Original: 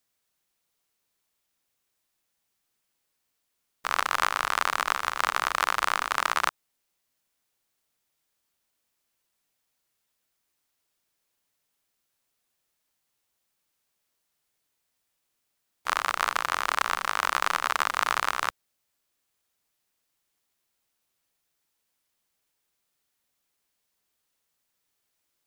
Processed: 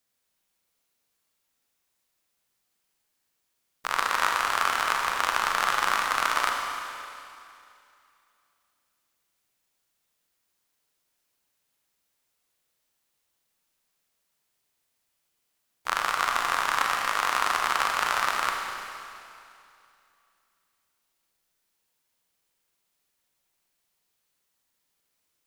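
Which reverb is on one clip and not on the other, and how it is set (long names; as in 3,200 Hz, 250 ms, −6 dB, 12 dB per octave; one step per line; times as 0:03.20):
four-comb reverb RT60 2.6 s, combs from 33 ms, DRR 1 dB
level −1 dB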